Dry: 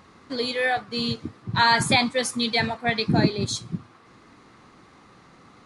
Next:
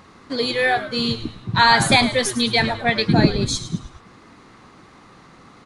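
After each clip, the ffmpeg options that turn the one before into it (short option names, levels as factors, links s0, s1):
-filter_complex "[0:a]asplit=5[s0][s1][s2][s3][s4];[s1]adelay=106,afreqshift=-120,volume=0.237[s5];[s2]adelay=212,afreqshift=-240,volume=0.1[s6];[s3]adelay=318,afreqshift=-360,volume=0.0417[s7];[s4]adelay=424,afreqshift=-480,volume=0.0176[s8];[s0][s5][s6][s7][s8]amix=inputs=5:normalize=0,volume=1.68"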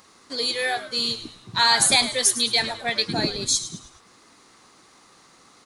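-af "bass=f=250:g=-9,treble=f=4000:g=15,volume=0.447"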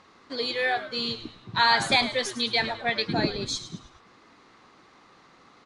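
-af "lowpass=3200"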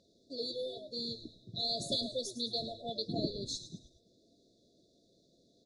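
-af "afftfilt=real='re*(1-between(b*sr/4096,710,3400))':imag='im*(1-between(b*sr/4096,710,3400))':win_size=4096:overlap=0.75,volume=0.376"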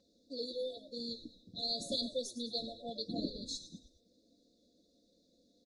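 -af "aecho=1:1:3.9:0.78,volume=0.596"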